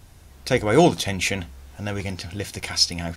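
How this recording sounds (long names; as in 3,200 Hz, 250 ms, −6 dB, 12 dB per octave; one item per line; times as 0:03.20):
background noise floor −49 dBFS
spectral slope −4.0 dB per octave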